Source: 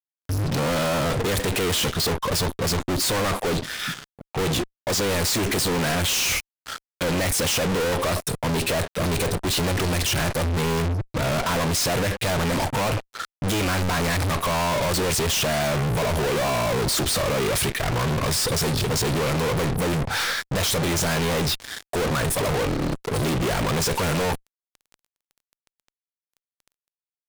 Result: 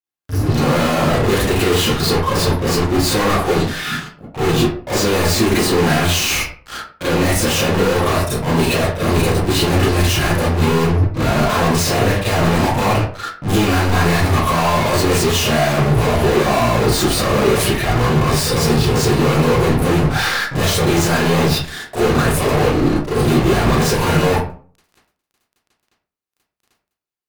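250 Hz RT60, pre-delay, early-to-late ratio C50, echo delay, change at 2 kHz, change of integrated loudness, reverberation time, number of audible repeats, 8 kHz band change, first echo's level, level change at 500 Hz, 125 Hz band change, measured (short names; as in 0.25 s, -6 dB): 0.50 s, 30 ms, 1.0 dB, none, +6.5 dB, +7.0 dB, 0.45 s, none, +3.0 dB, none, +8.0 dB, +8.5 dB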